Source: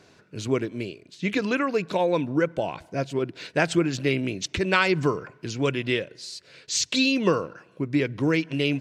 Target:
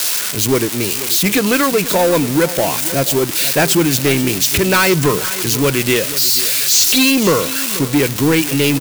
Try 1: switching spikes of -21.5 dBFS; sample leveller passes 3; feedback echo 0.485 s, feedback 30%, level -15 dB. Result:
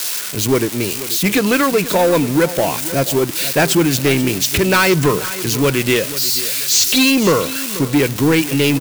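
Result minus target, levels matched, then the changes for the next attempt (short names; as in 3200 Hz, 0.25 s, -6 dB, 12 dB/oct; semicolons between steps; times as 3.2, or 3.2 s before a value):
switching spikes: distortion -10 dB
change: switching spikes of -11 dBFS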